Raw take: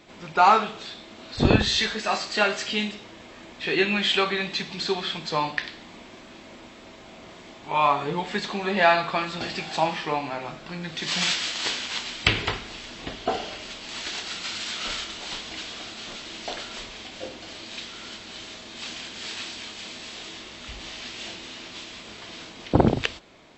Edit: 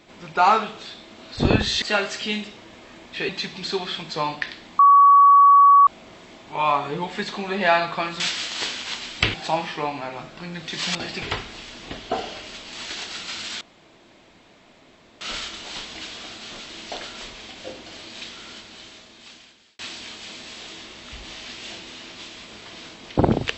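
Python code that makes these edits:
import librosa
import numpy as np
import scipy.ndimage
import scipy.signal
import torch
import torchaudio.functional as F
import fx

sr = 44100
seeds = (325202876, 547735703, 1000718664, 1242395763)

y = fx.edit(x, sr, fx.cut(start_s=1.82, length_s=0.47),
    fx.cut(start_s=3.76, length_s=0.69),
    fx.bleep(start_s=5.95, length_s=1.08, hz=1130.0, db=-8.5),
    fx.swap(start_s=9.36, length_s=0.27, other_s=11.24, other_length_s=1.14),
    fx.insert_room_tone(at_s=14.77, length_s=1.6),
    fx.fade_out_span(start_s=17.92, length_s=1.43), tone=tone)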